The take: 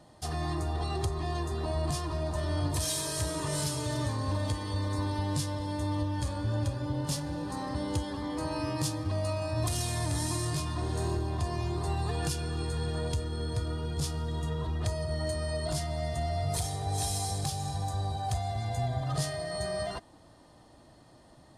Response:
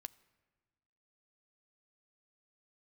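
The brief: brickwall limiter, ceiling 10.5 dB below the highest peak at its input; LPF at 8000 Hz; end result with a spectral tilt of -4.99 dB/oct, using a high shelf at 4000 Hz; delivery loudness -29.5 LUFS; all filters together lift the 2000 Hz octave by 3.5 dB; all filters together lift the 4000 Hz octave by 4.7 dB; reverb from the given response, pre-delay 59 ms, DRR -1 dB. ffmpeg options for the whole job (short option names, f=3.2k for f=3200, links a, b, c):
-filter_complex "[0:a]lowpass=8k,equalizer=f=2k:t=o:g=3.5,highshelf=f=4k:g=-5.5,equalizer=f=4k:t=o:g=8.5,alimiter=level_in=5dB:limit=-24dB:level=0:latency=1,volume=-5dB,asplit=2[a][b];[1:a]atrim=start_sample=2205,adelay=59[c];[b][c]afir=irnorm=-1:irlink=0,volume=6.5dB[d];[a][d]amix=inputs=2:normalize=0,volume=4.5dB"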